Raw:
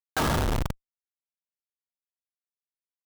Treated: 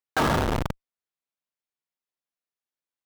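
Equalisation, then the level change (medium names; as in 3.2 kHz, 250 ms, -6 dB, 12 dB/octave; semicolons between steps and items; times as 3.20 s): bass shelf 110 Hz -8.5 dB; treble shelf 4.3 kHz -9 dB; +4.5 dB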